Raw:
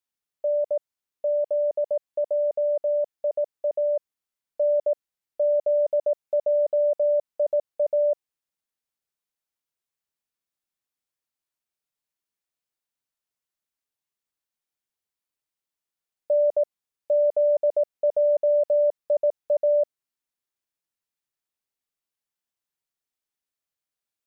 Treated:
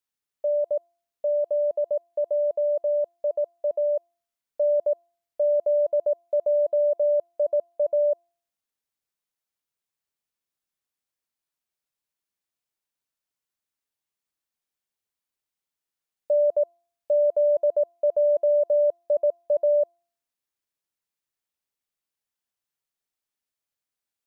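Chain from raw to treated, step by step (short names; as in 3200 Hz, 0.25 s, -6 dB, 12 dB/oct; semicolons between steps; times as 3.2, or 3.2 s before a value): de-hum 343.5 Hz, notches 4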